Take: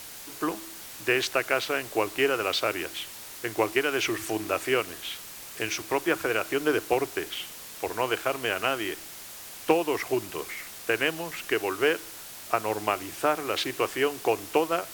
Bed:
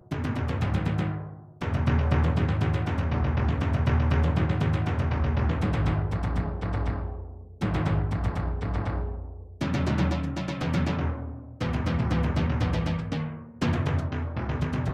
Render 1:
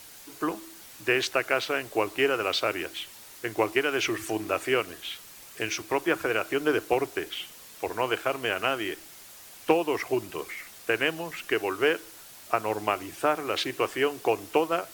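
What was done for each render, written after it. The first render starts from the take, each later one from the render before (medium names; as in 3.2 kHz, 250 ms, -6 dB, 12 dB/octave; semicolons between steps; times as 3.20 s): noise reduction 6 dB, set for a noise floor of -43 dBFS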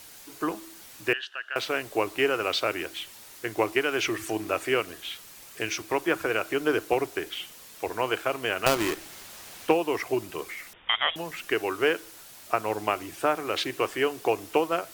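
1.13–1.56 s: two resonant band-passes 2.2 kHz, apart 0.81 oct; 8.66–9.67 s: square wave that keeps the level; 10.73–11.16 s: frequency inversion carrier 3.6 kHz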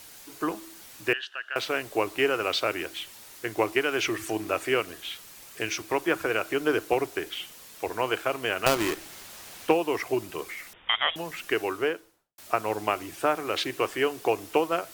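11.60–12.38 s: studio fade out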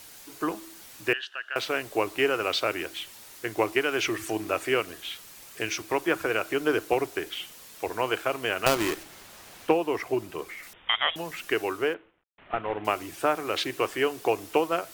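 9.03–10.63 s: treble shelf 2.5 kHz -5.5 dB; 11.94–12.85 s: CVSD coder 16 kbps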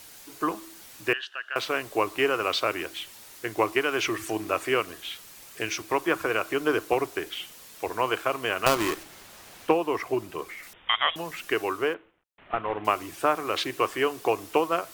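dynamic bell 1.1 kHz, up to +7 dB, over -47 dBFS, Q 4.8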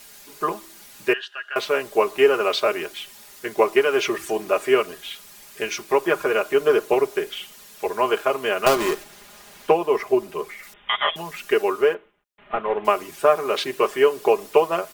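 comb 4.9 ms, depth 77%; dynamic bell 510 Hz, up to +7 dB, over -35 dBFS, Q 1.3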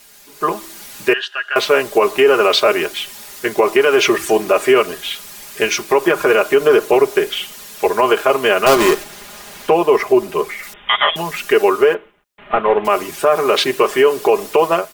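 peak limiter -13 dBFS, peak gain reduction 10 dB; level rider gain up to 12 dB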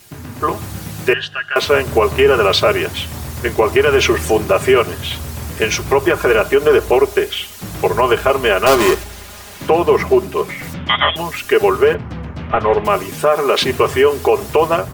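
add bed -2.5 dB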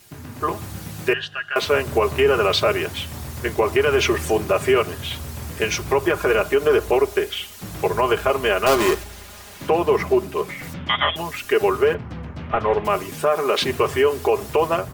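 trim -5.5 dB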